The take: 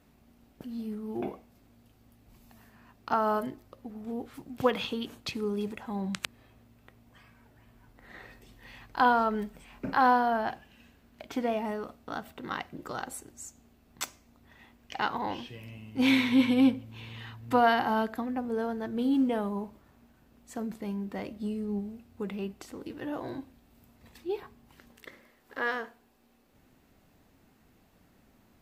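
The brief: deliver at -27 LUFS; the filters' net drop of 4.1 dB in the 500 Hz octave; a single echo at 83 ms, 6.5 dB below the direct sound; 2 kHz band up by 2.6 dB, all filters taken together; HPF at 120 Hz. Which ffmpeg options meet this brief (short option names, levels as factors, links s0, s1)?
-af "highpass=120,equalizer=f=500:t=o:g=-5.5,equalizer=f=2000:t=o:g=4,aecho=1:1:83:0.473,volume=1.5"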